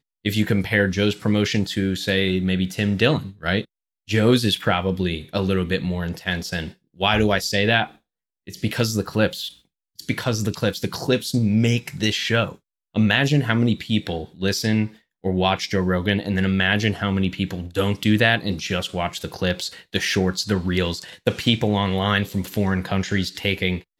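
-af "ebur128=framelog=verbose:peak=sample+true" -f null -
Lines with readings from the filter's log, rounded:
Integrated loudness:
  I:         -21.9 LUFS
  Threshold: -32.1 LUFS
Loudness range:
  LRA:         2.2 LU
  Threshold: -42.2 LUFS
  LRA low:   -23.3 LUFS
  LRA high:  -21.1 LUFS
Sample peak:
  Peak:       -3.0 dBFS
True peak:
  Peak:       -3.0 dBFS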